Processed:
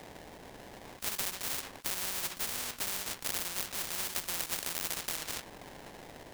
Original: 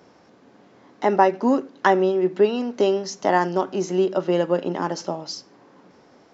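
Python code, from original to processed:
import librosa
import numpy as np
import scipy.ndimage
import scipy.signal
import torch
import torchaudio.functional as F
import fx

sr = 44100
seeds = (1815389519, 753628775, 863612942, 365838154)

y = fx.low_shelf(x, sr, hz=390.0, db=-10.0)
y = fx.sample_hold(y, sr, seeds[0], rate_hz=1300.0, jitter_pct=20)
y = fx.spectral_comp(y, sr, ratio=10.0)
y = F.gain(torch.from_numpy(y), -6.5).numpy()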